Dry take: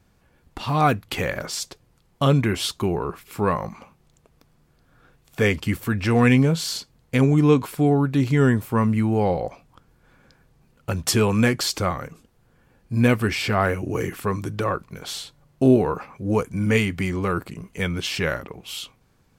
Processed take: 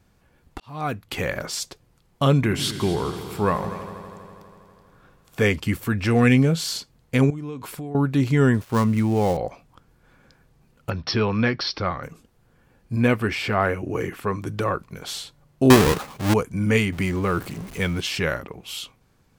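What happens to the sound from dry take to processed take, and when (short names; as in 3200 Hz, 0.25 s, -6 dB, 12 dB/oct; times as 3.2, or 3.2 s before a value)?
0.6–1.31 fade in
2.34–5.46 multi-head echo 81 ms, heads all three, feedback 67%, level -17 dB
6.1–6.58 bell 960 Hz -10.5 dB 0.22 oct
7.3–7.95 compressor 8:1, threshold -30 dBFS
8.54–9.37 switching dead time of 0.089 ms
10.9–12.03 rippled Chebyshev low-pass 5600 Hz, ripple 3 dB
12.96–14.47 tone controls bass -3 dB, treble -7 dB
15.7–16.34 half-waves squared off
16.92–18.01 zero-crossing step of -35.5 dBFS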